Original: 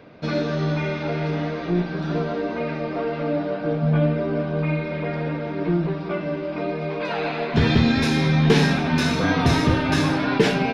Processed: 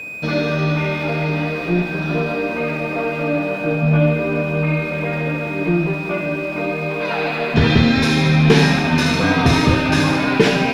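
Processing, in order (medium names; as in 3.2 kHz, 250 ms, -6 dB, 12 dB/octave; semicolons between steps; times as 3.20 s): thinning echo 73 ms, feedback 63%, high-pass 840 Hz, level -6 dB; whistle 2.5 kHz -31 dBFS; crossover distortion -51 dBFS; trim +4 dB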